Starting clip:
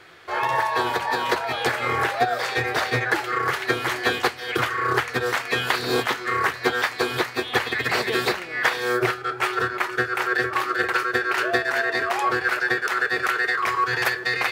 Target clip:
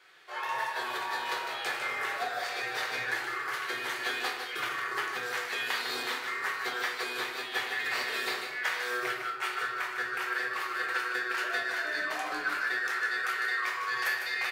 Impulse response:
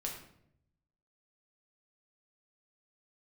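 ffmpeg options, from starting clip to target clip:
-filter_complex "[0:a]highpass=f=1300:p=1,asplit=3[s0][s1][s2];[s0]afade=t=out:st=11.83:d=0.02[s3];[s1]afreqshift=-67,afade=t=in:st=11.83:d=0.02,afade=t=out:st=12.53:d=0.02[s4];[s2]afade=t=in:st=12.53:d=0.02[s5];[s3][s4][s5]amix=inputs=3:normalize=0,aecho=1:1:153:0.447[s6];[1:a]atrim=start_sample=2205[s7];[s6][s7]afir=irnorm=-1:irlink=0,volume=0.447"

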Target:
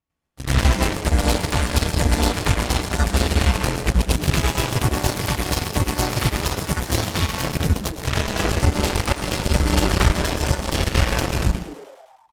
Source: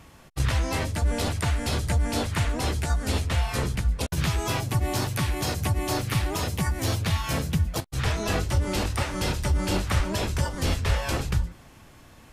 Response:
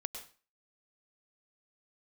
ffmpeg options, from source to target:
-filter_complex "[0:a]asplit=2[s0][s1];[1:a]atrim=start_sample=2205,asetrate=36162,aresample=44100,adelay=98[s2];[s1][s2]afir=irnorm=-1:irlink=0,volume=2[s3];[s0][s3]amix=inputs=2:normalize=0,aeval=exprs='0.596*(cos(1*acos(clip(val(0)/0.596,-1,1)))-cos(1*PI/2))+0.0841*(cos(7*acos(clip(val(0)/0.596,-1,1)))-cos(7*PI/2))':c=same,asplit=8[s4][s5][s6][s7][s8][s9][s10][s11];[s5]adelay=106,afreqshift=120,volume=0.168[s12];[s6]adelay=212,afreqshift=240,volume=0.107[s13];[s7]adelay=318,afreqshift=360,volume=0.0684[s14];[s8]adelay=424,afreqshift=480,volume=0.0442[s15];[s9]adelay=530,afreqshift=600,volume=0.0282[s16];[s10]adelay=636,afreqshift=720,volume=0.018[s17];[s11]adelay=742,afreqshift=840,volume=0.0115[s18];[s4][s12][s13][s14][s15][s16][s17][s18]amix=inputs=8:normalize=0"

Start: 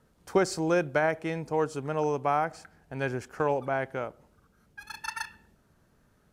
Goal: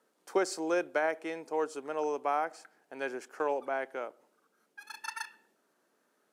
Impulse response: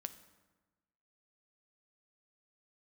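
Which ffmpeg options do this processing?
-af "highpass=f=290:w=0.5412,highpass=f=290:w=1.3066,equalizer=f=8800:t=o:w=0.77:g=2,volume=0.631"

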